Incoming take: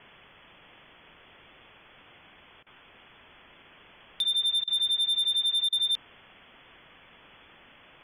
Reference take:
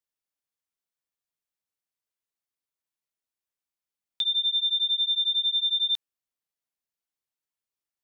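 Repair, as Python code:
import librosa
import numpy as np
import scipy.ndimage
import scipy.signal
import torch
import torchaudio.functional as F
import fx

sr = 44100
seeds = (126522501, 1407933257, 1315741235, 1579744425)

y = fx.fix_declip(x, sr, threshold_db=-22.5)
y = fx.fix_interpolate(y, sr, at_s=(2.63, 4.64, 5.69), length_ms=34.0)
y = fx.noise_reduce(y, sr, print_start_s=2.44, print_end_s=2.94, reduce_db=30.0)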